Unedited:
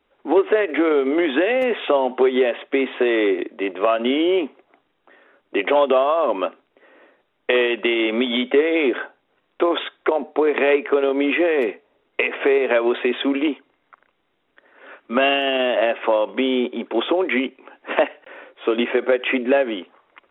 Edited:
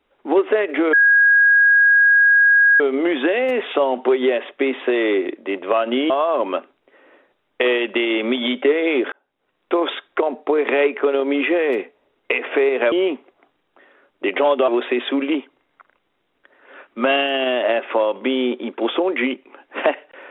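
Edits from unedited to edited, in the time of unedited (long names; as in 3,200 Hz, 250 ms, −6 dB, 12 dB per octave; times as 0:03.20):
0:00.93: insert tone 1,640 Hz −9.5 dBFS 1.87 s
0:04.23–0:05.99: move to 0:12.81
0:09.01–0:09.61: fade in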